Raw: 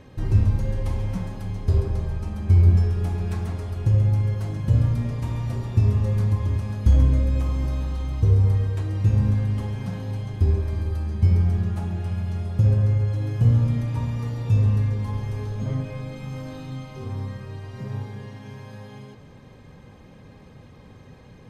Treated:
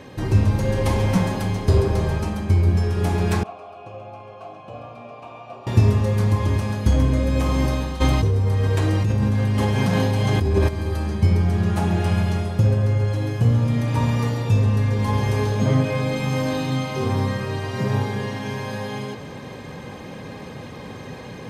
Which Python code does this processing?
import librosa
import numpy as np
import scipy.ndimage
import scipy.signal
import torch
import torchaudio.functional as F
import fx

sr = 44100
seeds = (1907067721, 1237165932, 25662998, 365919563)

y = fx.vowel_filter(x, sr, vowel='a', at=(3.43, 5.67))
y = fx.env_flatten(y, sr, amount_pct=100, at=(8.0, 10.67), fade=0.02)
y = fx.highpass(y, sr, hz=250.0, slope=6)
y = fx.notch(y, sr, hz=1300.0, q=25.0)
y = fx.rider(y, sr, range_db=10, speed_s=0.5)
y = y * 10.0 ** (5.5 / 20.0)